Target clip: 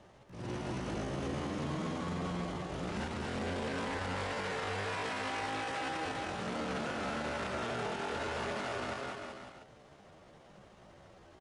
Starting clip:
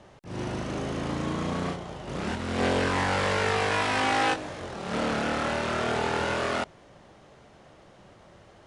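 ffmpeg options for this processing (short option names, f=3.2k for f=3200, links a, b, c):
-af "aecho=1:1:170|323|460.7|584.6|696.2:0.631|0.398|0.251|0.158|0.1,atempo=0.76,alimiter=limit=-22.5dB:level=0:latency=1:release=33,volume=-6dB"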